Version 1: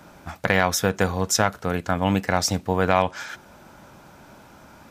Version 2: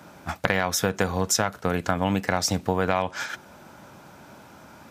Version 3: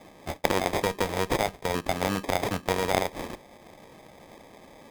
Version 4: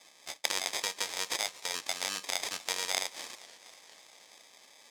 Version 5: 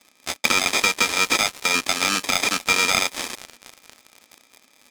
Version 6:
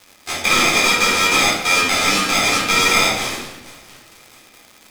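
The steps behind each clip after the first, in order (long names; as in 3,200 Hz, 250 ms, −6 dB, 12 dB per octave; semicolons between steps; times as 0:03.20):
noise gate −34 dBFS, range −6 dB; high-pass filter 77 Hz; downward compressor 4 to 1, threshold −27 dBFS, peak gain reduction 12 dB; level +6.5 dB
decimation without filtering 31×; bass and treble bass −8 dB, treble −2 dB; harmonic generator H 4 −12 dB, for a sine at −1.5 dBFS
resonant band-pass 6,100 Hz, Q 1.1; feedback echo with a swinging delay time 238 ms, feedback 72%, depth 217 cents, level −20 dB; level +6 dB
hollow resonant body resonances 240/1,300/2,400 Hz, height 16 dB, ringing for 40 ms; leveller curve on the samples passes 3; level +1.5 dB
rectangular room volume 340 cubic metres, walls mixed, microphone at 3.9 metres; surface crackle 180 per second −26 dBFS; level −4.5 dB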